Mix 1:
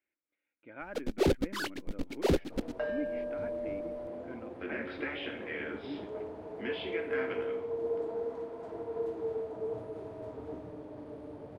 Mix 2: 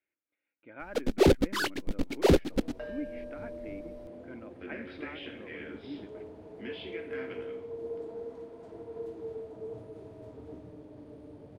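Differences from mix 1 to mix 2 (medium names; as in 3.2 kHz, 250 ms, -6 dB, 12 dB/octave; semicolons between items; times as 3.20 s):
first sound +5.5 dB; second sound: add peaking EQ 1 kHz -8.5 dB 2.5 oct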